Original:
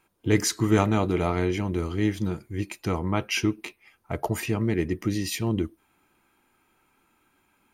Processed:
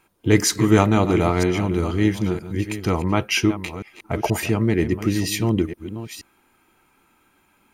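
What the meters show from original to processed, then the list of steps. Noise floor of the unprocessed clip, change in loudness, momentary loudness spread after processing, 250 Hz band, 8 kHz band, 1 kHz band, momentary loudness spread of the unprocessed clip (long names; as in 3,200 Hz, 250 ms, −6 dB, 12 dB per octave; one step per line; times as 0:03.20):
−68 dBFS, +5.5 dB, 16 LU, +6.0 dB, +6.0 dB, +6.0 dB, 10 LU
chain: delay that plays each chunk backwards 478 ms, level −11.5 dB
level +5.5 dB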